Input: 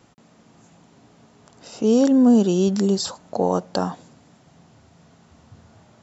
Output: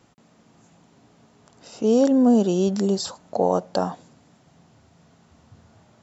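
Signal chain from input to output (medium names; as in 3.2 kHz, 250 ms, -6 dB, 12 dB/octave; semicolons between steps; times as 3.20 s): dynamic bell 630 Hz, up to +6 dB, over -33 dBFS, Q 1.6; trim -3 dB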